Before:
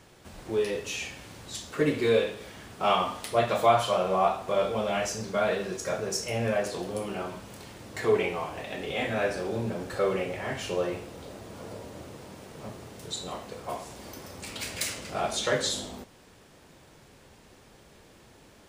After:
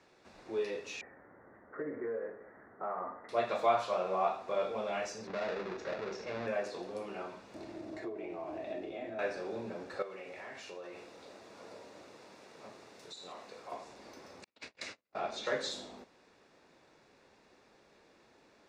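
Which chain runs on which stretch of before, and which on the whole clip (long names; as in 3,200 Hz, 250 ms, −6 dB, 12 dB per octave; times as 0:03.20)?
0:01.01–0:03.29: Chebyshev low-pass with heavy ripple 2,000 Hz, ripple 3 dB + downward compressor, threshold −26 dBFS
0:05.27–0:06.47: each half-wave held at its own peak + downward compressor 2.5 to 1, threshold −28 dBFS + high-frequency loss of the air 160 metres
0:07.54–0:09.19: parametric band 79 Hz +10.5 dB 2.7 octaves + downward compressor 12 to 1, threshold −36 dBFS + hollow resonant body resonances 330/630 Hz, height 17 dB, ringing for 55 ms
0:10.02–0:13.72: spectral tilt +1.5 dB per octave + downward compressor 5 to 1, threshold −35 dBFS
0:14.44–0:15.46: noise gate −36 dBFS, range −43 dB + high-frequency loss of the air 66 metres
whole clip: three-way crossover with the lows and the highs turned down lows −14 dB, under 220 Hz, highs −21 dB, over 6,200 Hz; notch filter 3,100 Hz, Q 6.9; level −7 dB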